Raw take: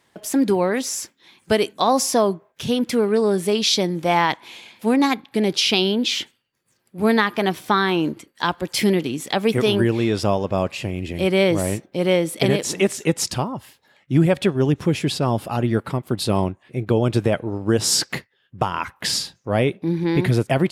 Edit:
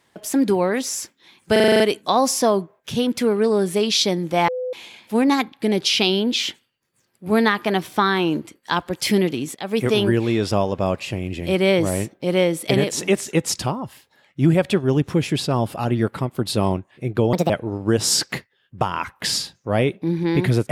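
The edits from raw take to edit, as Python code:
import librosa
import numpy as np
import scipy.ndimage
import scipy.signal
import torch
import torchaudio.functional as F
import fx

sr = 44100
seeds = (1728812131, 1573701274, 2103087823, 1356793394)

y = fx.edit(x, sr, fx.stutter(start_s=1.52, slice_s=0.04, count=8),
    fx.bleep(start_s=4.2, length_s=0.25, hz=505.0, db=-23.0),
    fx.fade_in_from(start_s=9.27, length_s=0.39, curve='qsin', floor_db=-23.5),
    fx.speed_span(start_s=17.05, length_s=0.25, speed=1.5), tone=tone)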